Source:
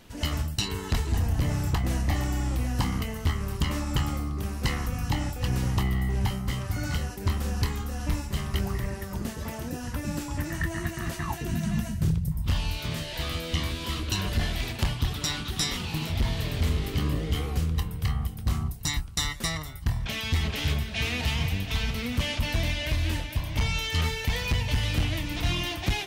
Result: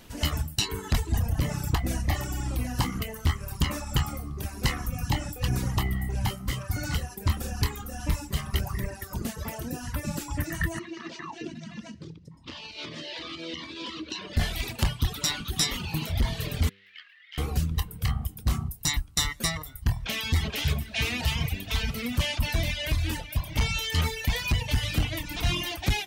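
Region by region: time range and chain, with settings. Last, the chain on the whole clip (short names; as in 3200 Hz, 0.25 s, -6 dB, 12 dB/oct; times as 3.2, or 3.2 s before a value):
10.79–14.37 notches 50/100/150/200/250/300/350/400 Hz + compressor 4:1, threshold -30 dBFS + speaker cabinet 250–5400 Hz, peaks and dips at 310 Hz +8 dB, 750 Hz -8 dB, 1500 Hz -5 dB
16.69–17.38 Chebyshev high-pass 1700 Hz, order 4 + air absorption 410 m + Doppler distortion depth 0.45 ms
whole clip: de-hum 98.41 Hz, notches 5; reverb removal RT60 1.3 s; high shelf 8500 Hz +5 dB; gain +2 dB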